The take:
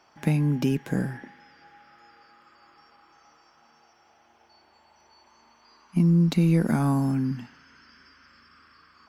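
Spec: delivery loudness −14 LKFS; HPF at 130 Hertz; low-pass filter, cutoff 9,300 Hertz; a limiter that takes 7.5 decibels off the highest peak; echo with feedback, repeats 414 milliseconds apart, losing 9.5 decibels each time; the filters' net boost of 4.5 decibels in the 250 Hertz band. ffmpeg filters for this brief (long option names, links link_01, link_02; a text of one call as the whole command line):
ffmpeg -i in.wav -af "highpass=130,lowpass=9300,equalizer=frequency=250:width_type=o:gain=7.5,alimiter=limit=-15.5dB:level=0:latency=1,aecho=1:1:414|828|1242|1656:0.335|0.111|0.0365|0.012,volume=10dB" out.wav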